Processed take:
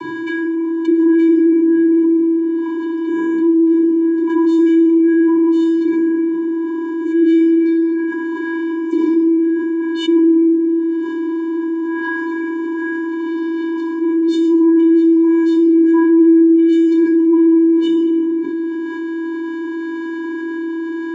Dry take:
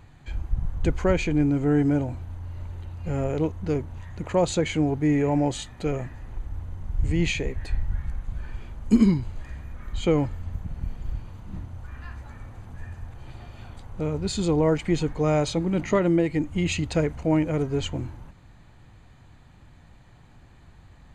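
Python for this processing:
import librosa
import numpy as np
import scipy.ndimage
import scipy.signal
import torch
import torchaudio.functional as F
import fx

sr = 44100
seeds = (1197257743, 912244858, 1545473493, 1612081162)

y = fx.high_shelf(x, sr, hz=5800.0, db=-9.5)
y = fx.hum_notches(y, sr, base_hz=50, count=6)
y = fx.comb_fb(y, sr, f0_hz=330.0, decay_s=0.82, harmonics='all', damping=0.0, mix_pct=80)
y = fx.vocoder(y, sr, bands=16, carrier='square', carrier_hz=330.0)
y = fx.room_shoebox(y, sr, seeds[0], volume_m3=560.0, walls='mixed', distance_m=2.9)
y = fx.env_flatten(y, sr, amount_pct=70)
y = y * 10.0 ** (8.0 / 20.0)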